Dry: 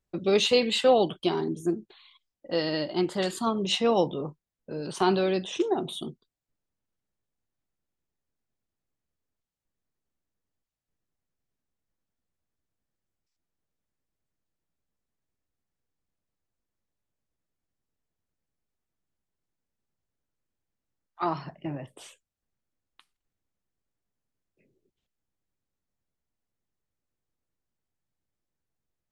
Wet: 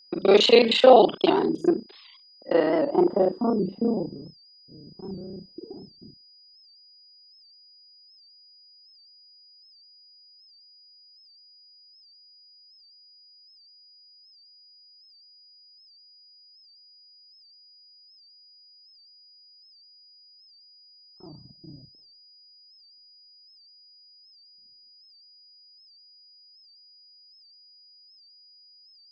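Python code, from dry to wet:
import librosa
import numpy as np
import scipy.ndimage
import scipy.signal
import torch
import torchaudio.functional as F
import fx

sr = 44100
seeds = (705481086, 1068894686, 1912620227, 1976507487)

y = fx.local_reverse(x, sr, ms=31.0)
y = fx.dynamic_eq(y, sr, hz=830.0, q=0.72, threshold_db=-37.0, ratio=4.0, max_db=6)
y = fx.filter_sweep_lowpass(y, sr, from_hz=4200.0, to_hz=110.0, start_s=2.02, end_s=4.37, q=1.1)
y = fx.low_shelf_res(y, sr, hz=180.0, db=-8.0, q=1.5)
y = y + 10.0 ** (-55.0 / 20.0) * np.sin(2.0 * np.pi * 4900.0 * np.arange(len(y)) / sr)
y = fx.record_warp(y, sr, rpm=78.0, depth_cents=100.0)
y = F.gain(torch.from_numpy(y), 3.0).numpy()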